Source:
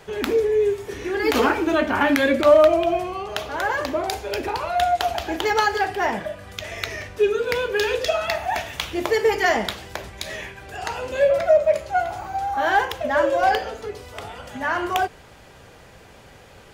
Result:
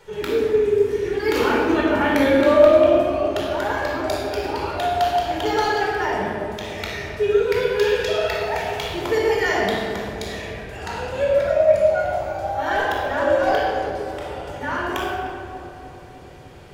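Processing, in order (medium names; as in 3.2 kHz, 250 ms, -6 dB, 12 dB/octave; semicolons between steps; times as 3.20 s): filtered feedback delay 303 ms, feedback 73%, low-pass 1.2 kHz, level -10.5 dB; reverberation RT60 1.8 s, pre-delay 22 ms, DRR -2.5 dB; trim -7 dB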